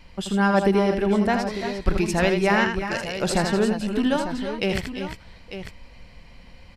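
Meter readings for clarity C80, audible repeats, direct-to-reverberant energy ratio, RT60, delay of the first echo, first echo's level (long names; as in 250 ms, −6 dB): no reverb audible, 3, no reverb audible, no reverb audible, 81 ms, −6.5 dB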